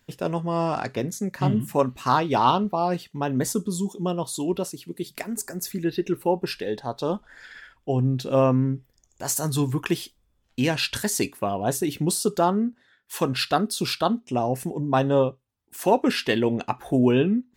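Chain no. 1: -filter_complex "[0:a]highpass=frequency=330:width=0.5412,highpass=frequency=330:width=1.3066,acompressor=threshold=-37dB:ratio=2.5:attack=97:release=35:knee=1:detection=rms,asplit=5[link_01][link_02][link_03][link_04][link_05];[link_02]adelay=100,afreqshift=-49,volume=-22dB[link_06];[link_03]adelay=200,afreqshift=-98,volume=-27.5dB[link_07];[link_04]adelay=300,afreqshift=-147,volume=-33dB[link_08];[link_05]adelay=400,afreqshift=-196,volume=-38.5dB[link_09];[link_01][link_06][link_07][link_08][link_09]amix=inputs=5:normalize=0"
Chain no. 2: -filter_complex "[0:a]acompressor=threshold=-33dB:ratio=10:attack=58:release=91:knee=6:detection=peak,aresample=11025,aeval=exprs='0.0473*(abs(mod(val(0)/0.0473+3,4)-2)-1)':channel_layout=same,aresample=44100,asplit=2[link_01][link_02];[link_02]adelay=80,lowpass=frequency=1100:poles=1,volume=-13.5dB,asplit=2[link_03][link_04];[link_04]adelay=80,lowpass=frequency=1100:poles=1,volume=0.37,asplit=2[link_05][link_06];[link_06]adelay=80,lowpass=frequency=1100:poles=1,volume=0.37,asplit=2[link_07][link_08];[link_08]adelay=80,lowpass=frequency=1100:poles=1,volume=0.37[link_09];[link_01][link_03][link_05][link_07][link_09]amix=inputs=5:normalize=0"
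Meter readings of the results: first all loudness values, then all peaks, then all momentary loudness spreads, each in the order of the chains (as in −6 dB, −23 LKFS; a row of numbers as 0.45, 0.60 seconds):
−33.0, −35.0 LKFS; −13.5, −21.5 dBFS; 7, 6 LU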